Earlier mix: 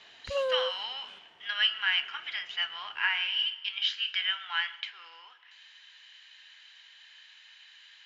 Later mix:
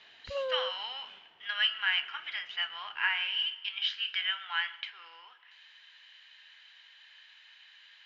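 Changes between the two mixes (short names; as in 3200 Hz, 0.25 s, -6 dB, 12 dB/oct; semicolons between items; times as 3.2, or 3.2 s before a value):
background -4.0 dB; master: add air absorption 120 m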